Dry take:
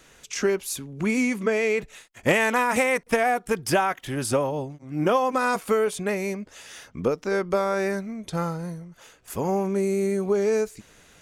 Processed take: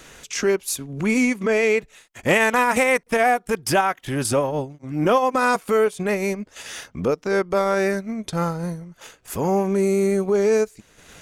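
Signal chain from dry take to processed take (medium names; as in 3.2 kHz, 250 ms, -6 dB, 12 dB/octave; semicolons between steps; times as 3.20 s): transient shaper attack -6 dB, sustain -10 dB; in parallel at -2 dB: compression, threshold -38 dBFS, peak gain reduction 18.5 dB; on the sum: trim +4 dB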